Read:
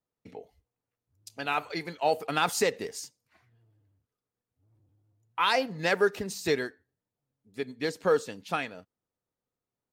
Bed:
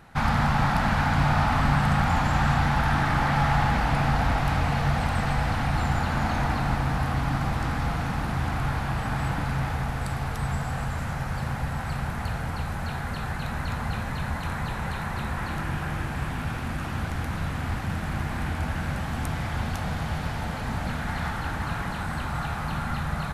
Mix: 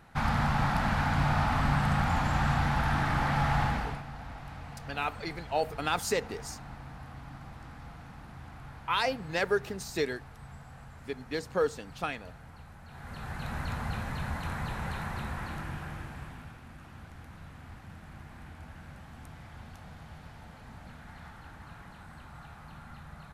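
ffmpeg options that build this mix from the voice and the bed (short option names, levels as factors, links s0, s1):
-filter_complex "[0:a]adelay=3500,volume=0.668[s0];[1:a]volume=2.99,afade=t=out:st=3.63:d=0.4:silence=0.188365,afade=t=in:st=12.88:d=0.67:silence=0.188365,afade=t=out:st=15:d=1.58:silence=0.211349[s1];[s0][s1]amix=inputs=2:normalize=0"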